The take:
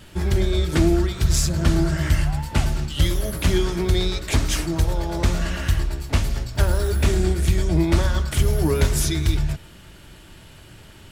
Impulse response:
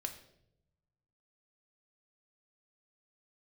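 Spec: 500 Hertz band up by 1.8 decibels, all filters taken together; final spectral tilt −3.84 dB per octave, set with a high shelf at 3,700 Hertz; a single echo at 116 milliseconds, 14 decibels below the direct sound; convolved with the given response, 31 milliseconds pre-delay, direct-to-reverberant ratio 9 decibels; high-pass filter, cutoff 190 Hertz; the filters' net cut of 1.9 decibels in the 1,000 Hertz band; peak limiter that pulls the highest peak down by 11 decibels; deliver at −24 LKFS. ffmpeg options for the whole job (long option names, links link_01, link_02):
-filter_complex "[0:a]highpass=190,equalizer=frequency=500:width_type=o:gain=4,equalizer=frequency=1000:width_type=o:gain=-4.5,highshelf=frequency=3700:gain=7,alimiter=limit=-18dB:level=0:latency=1,aecho=1:1:116:0.2,asplit=2[link_01][link_02];[1:a]atrim=start_sample=2205,adelay=31[link_03];[link_02][link_03]afir=irnorm=-1:irlink=0,volume=-8dB[link_04];[link_01][link_04]amix=inputs=2:normalize=0,volume=3dB"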